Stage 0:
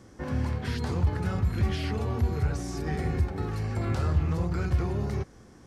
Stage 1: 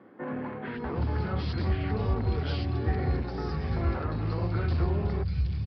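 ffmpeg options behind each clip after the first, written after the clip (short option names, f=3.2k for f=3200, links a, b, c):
-filter_complex "[0:a]aresample=11025,volume=23dB,asoftclip=hard,volume=-23dB,aresample=44100,acrossover=split=170|2500[a][b][c];[a]adelay=650[d];[c]adelay=740[e];[d][b][e]amix=inputs=3:normalize=0,volume=1.5dB"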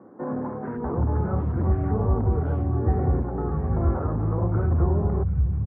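-af "lowpass=f=1.2k:w=0.5412,lowpass=f=1.2k:w=1.3066,volume=5.5dB"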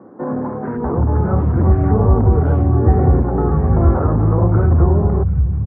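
-filter_complex "[0:a]dynaudnorm=f=490:g=5:m=5.5dB,aemphasis=mode=reproduction:type=50fm,asplit=2[a][b];[b]acompressor=threshold=-22dB:ratio=6,volume=-2.5dB[c];[a][c]amix=inputs=2:normalize=0,volume=2dB"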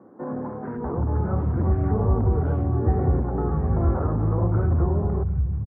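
-af "aecho=1:1:132:0.141,volume=-8.5dB"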